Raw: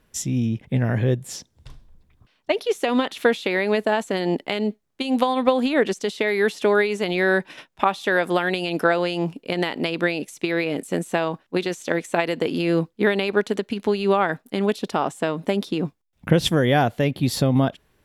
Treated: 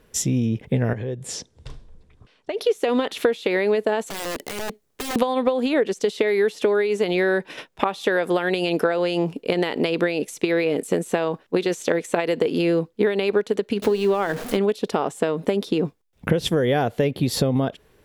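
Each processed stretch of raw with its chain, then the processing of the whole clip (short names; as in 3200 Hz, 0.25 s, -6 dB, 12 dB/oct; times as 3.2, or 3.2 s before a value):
0.93–2.61 LPF 10000 Hz 24 dB/oct + compressor 8:1, threshold -31 dBFS
4.06–5.16 high shelf 5500 Hz +7 dB + compressor 3:1, threshold -31 dBFS + wrapped overs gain 29 dB
13.82–14.57 zero-crossing step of -31 dBFS + notches 60/120/180/240/300/360/420/480 Hz
whole clip: bell 450 Hz +8 dB 0.54 oct; compressor, threshold -22 dBFS; gain +4.5 dB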